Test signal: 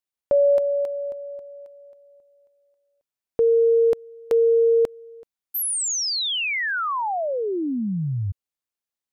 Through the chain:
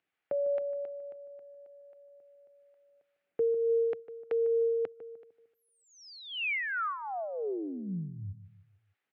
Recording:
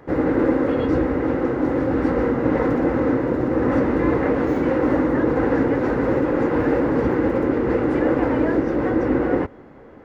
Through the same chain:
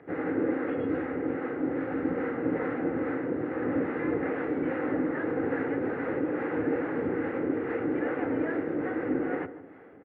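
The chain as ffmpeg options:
ffmpeg -i in.wav -filter_complex "[0:a]aemphasis=mode=production:type=50fm,acrossover=split=590[link_01][link_02];[link_01]aeval=exprs='val(0)*(1-0.5/2+0.5/2*cos(2*PI*2.4*n/s))':channel_layout=same[link_03];[link_02]aeval=exprs='val(0)*(1-0.5/2-0.5/2*cos(2*PI*2.4*n/s))':channel_layout=same[link_04];[link_03][link_04]amix=inputs=2:normalize=0,acompressor=mode=upward:threshold=-36dB:ratio=2.5:attack=0.49:release=101:knee=2.83:detection=peak,highpass=frequency=110:width=0.5412,highpass=frequency=110:width=1.3066,equalizer=frequency=130:width_type=q:width=4:gain=-10,equalizer=frequency=220:width_type=q:width=4:gain=-8,equalizer=frequency=350:width_type=q:width=4:gain=-3,equalizer=frequency=570:width_type=q:width=4:gain=-6,equalizer=frequency=1000:width_type=q:width=4:gain=-10,lowpass=frequency=2400:width=0.5412,lowpass=frequency=2400:width=1.3066,asplit=2[link_05][link_06];[link_06]adelay=151,lowpass=frequency=1100:poles=1,volume=-12.5dB,asplit=2[link_07][link_08];[link_08]adelay=151,lowpass=frequency=1100:poles=1,volume=0.44,asplit=2[link_09][link_10];[link_10]adelay=151,lowpass=frequency=1100:poles=1,volume=0.44,asplit=2[link_11][link_12];[link_12]adelay=151,lowpass=frequency=1100:poles=1,volume=0.44[link_13];[link_05][link_07][link_09][link_11][link_13]amix=inputs=5:normalize=0,volume=-4dB" -ar 48000 -c:a libopus -b:a 96k out.opus

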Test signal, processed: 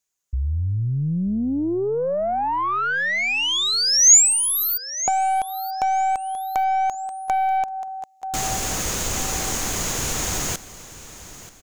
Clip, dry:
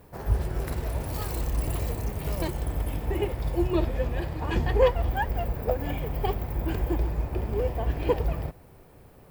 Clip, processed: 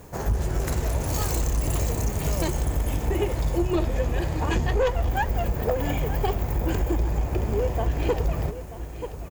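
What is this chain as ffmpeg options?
ffmpeg -i in.wav -af "aecho=1:1:933|1866|2799:0.141|0.0551|0.0215,aeval=exprs='(tanh(7.94*val(0)+0.2)-tanh(0.2))/7.94':channel_layout=same,acompressor=threshold=-29dB:ratio=2.5,equalizer=frequency=6700:width_type=o:width=0.39:gain=14,volume=7.5dB" out.wav

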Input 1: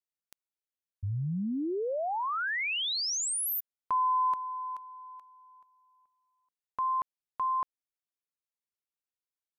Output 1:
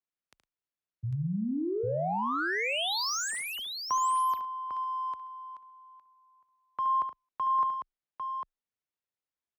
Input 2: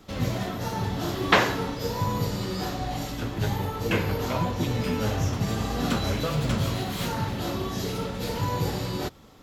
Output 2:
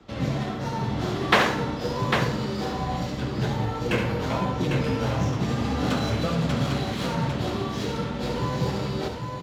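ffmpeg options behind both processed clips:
ffmpeg -i in.wav -af "afreqshift=17,adynamicsmooth=sensitivity=7:basefreq=4300,aecho=1:1:72|109|800:0.398|0.15|0.531" out.wav

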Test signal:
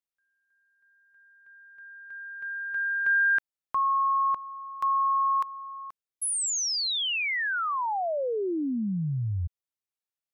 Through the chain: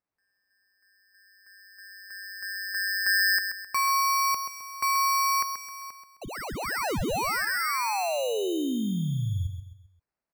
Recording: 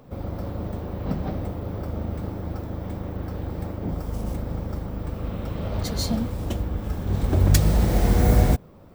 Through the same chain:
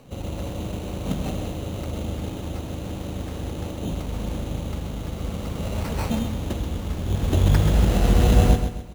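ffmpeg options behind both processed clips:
ffmpeg -i in.wav -filter_complex "[0:a]acrossover=split=5000[link_01][link_02];[link_02]acompressor=threshold=-39dB:ratio=4:attack=1:release=60[link_03];[link_01][link_03]amix=inputs=2:normalize=0,acrusher=samples=13:mix=1:aa=0.000001,aecho=1:1:131|262|393|524:0.398|0.151|0.0575|0.0218" out.wav

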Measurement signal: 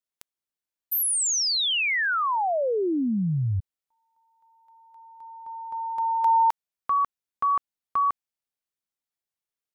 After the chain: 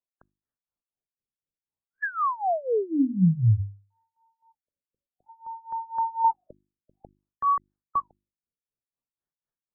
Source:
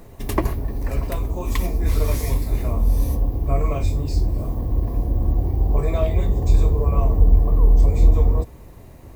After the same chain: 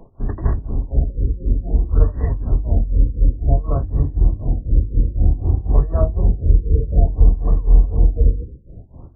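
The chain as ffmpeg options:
ffmpeg -i in.wav -filter_complex "[0:a]acrossover=split=240[link_01][link_02];[link_01]dynaudnorm=framelen=110:gausssize=3:maxgain=7.5dB[link_03];[link_03][link_02]amix=inputs=2:normalize=0,tremolo=f=4:d=0.92,bandreject=frequency=50:width_type=h:width=6,bandreject=frequency=100:width_type=h:width=6,bandreject=frequency=150:width_type=h:width=6,bandreject=frequency=200:width_type=h:width=6,bandreject=frequency=250:width_type=h:width=6,bandreject=frequency=300:width_type=h:width=6,bandreject=frequency=350:width_type=h:width=6,afftfilt=real='re*lt(b*sr/1024,540*pow(2000/540,0.5+0.5*sin(2*PI*0.56*pts/sr)))':imag='im*lt(b*sr/1024,540*pow(2000/540,0.5+0.5*sin(2*PI*0.56*pts/sr)))':win_size=1024:overlap=0.75,volume=2dB" out.wav

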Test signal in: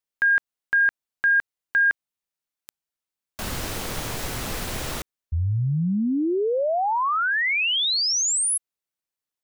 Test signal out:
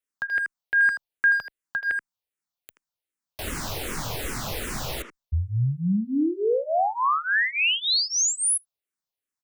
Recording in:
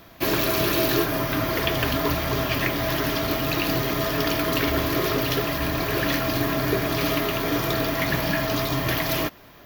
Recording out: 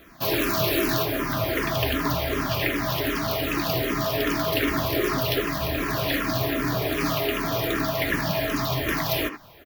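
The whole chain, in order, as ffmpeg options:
ffmpeg -i in.wav -filter_complex "[0:a]asplit=2[link_01][link_02];[link_02]adelay=80,highpass=300,lowpass=3400,asoftclip=type=hard:threshold=-17dB,volume=-8dB[link_03];[link_01][link_03]amix=inputs=2:normalize=0,asplit=2[link_04][link_05];[link_05]afreqshift=-2.6[link_06];[link_04][link_06]amix=inputs=2:normalize=1,volume=1.5dB" out.wav

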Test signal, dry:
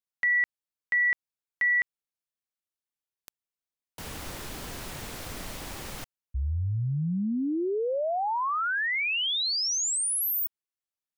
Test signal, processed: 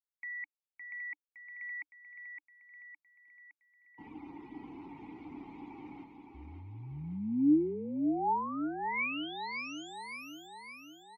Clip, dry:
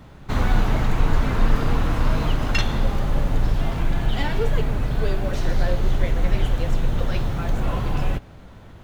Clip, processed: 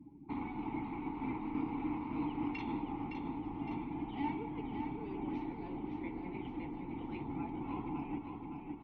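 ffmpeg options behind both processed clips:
ffmpeg -i in.wav -filter_complex "[0:a]afftdn=noise_reduction=22:noise_floor=-41,highshelf=frequency=4900:gain=-8,areverse,acompressor=threshold=-26dB:ratio=5:attack=21:release=96:knee=1:detection=rms,areverse,asplit=3[link_01][link_02][link_03];[link_01]bandpass=frequency=300:width_type=q:width=8,volume=0dB[link_04];[link_02]bandpass=frequency=870:width_type=q:width=8,volume=-6dB[link_05];[link_03]bandpass=frequency=2240:width_type=q:width=8,volume=-9dB[link_06];[link_04][link_05][link_06]amix=inputs=3:normalize=0,aecho=1:1:563|1126|1689|2252|2815|3378|3941:0.501|0.286|0.163|0.0928|0.0529|0.0302|0.0172,volume=6.5dB" out.wav

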